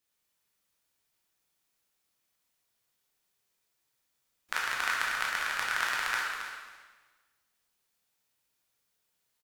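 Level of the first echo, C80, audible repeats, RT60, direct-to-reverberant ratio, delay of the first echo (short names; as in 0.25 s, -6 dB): -9.5 dB, 2.0 dB, 1, 1.4 s, -4.5 dB, 0.273 s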